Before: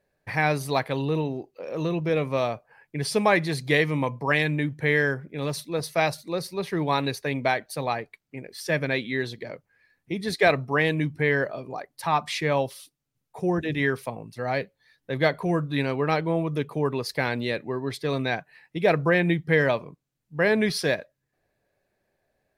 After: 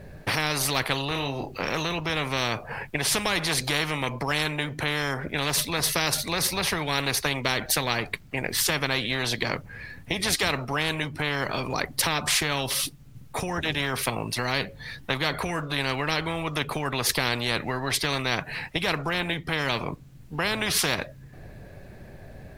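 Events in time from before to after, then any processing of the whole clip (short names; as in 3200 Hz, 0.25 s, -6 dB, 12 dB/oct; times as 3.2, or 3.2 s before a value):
1.08–1.68 doubler 29 ms -7 dB
whole clip: tone controls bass +14 dB, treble -4 dB; compressor 4:1, threshold -24 dBFS; spectral compressor 4:1; gain +5 dB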